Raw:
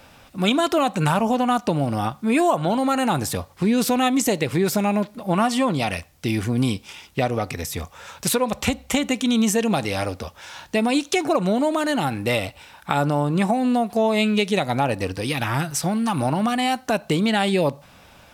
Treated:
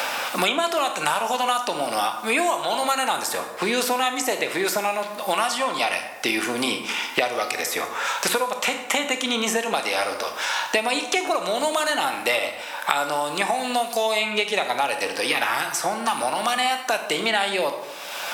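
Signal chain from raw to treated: high-pass 670 Hz 12 dB/octave; reverberation RT60 0.75 s, pre-delay 18 ms, DRR 6.5 dB; three bands compressed up and down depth 100%; trim +1.5 dB

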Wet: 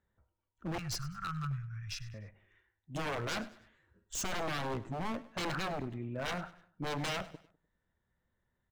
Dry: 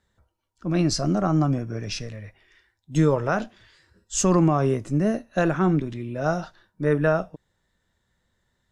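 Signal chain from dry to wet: local Wiener filter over 9 samples; 0.78–2.14 s: elliptic band-stop 130–1300 Hz, stop band 50 dB; dynamic bell 1.5 kHz, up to +7 dB, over -43 dBFS, Q 1.7; wavefolder -22 dBFS; on a send: feedback delay 100 ms, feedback 40%, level -18 dB; on the sum: trim -8.5 dB

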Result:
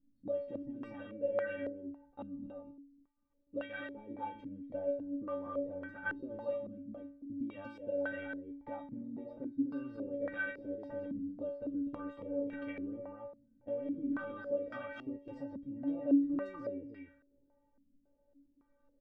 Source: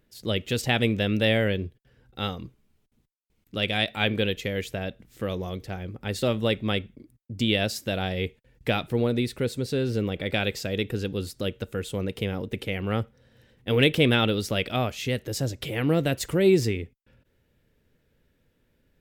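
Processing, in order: peak limiter -17 dBFS, peak gain reduction 10.5 dB; compression, threshold -32 dBFS, peak gain reduction 10.5 dB; inharmonic resonator 280 Hz, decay 0.52 s, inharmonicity 0.008; delay 248 ms -4.5 dB; step-sequenced low-pass 3.6 Hz 230–1500 Hz; trim +10 dB

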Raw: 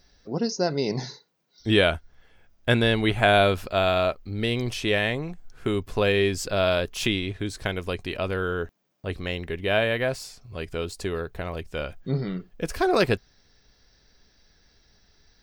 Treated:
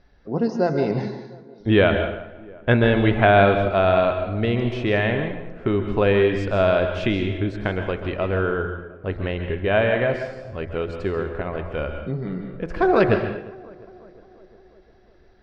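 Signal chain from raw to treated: low-pass 1.9 kHz 12 dB/octave; de-hum 85.41 Hz, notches 27; on a send: tape echo 354 ms, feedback 69%, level -20 dB, low-pass 1.5 kHz; on the sum: plate-style reverb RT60 0.61 s, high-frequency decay 0.95×, pre-delay 120 ms, DRR 6.5 dB; 11.98–12.71 s: compression 4:1, threshold -29 dBFS, peak gain reduction 7 dB; trim +4.5 dB

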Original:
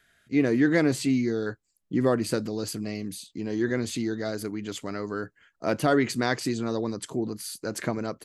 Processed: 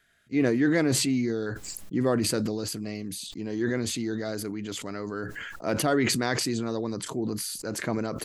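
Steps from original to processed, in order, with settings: decay stretcher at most 24 dB/s; trim -2.5 dB

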